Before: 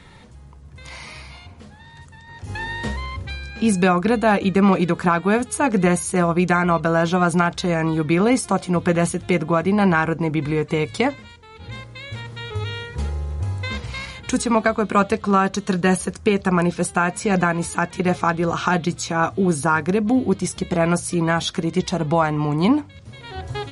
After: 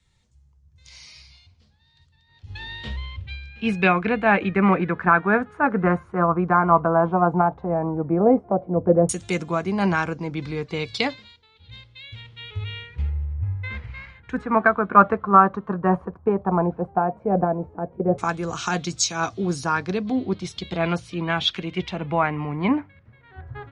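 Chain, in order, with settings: LFO low-pass saw down 0.11 Hz 530–7800 Hz; three bands expanded up and down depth 70%; trim -4.5 dB

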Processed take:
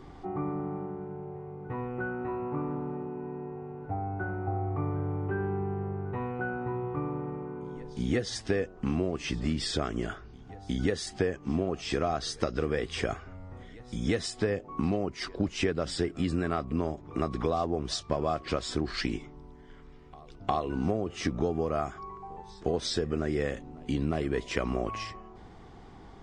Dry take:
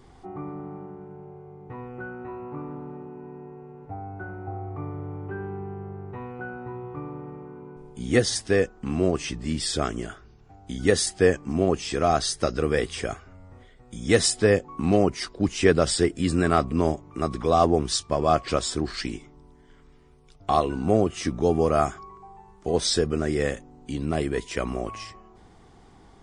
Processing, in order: compression 16:1, threshold -27 dBFS, peak gain reduction 15.5 dB; distance through air 94 m; on a send: reverse echo 357 ms -23 dB; on the sum: trim +3 dB

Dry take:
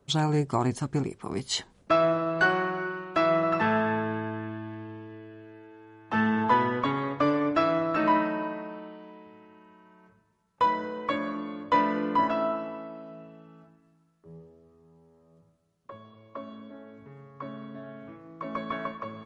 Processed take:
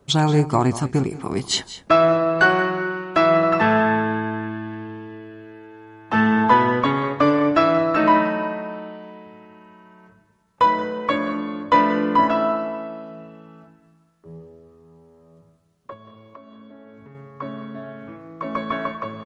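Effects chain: 15.93–17.15 s: compression 16:1, threshold -48 dBFS, peak gain reduction 14 dB; multi-tap echo 179/205 ms -17/-19.5 dB; trim +7.5 dB

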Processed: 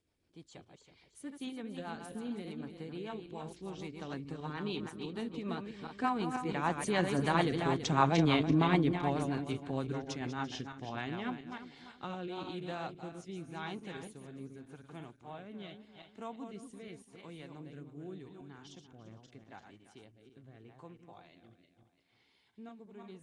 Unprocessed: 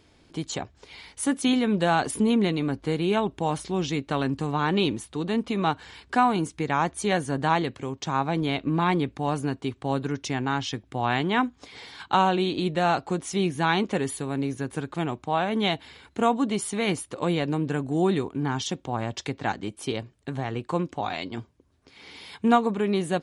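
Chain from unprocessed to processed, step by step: backward echo that repeats 167 ms, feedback 53%, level -6 dB; Doppler pass-by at 8.07 s, 8 m/s, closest 6 m; rotary cabinet horn 6.7 Hz, later 0.85 Hz, at 11.12 s; Nellymoser 44 kbps 22.05 kHz

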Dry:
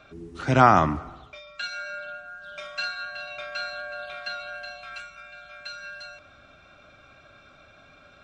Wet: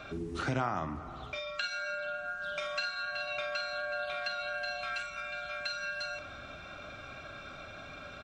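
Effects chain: compression 4:1, threshold -41 dBFS, peak gain reduction 25 dB; doubling 49 ms -11.5 dB; trim +6.5 dB

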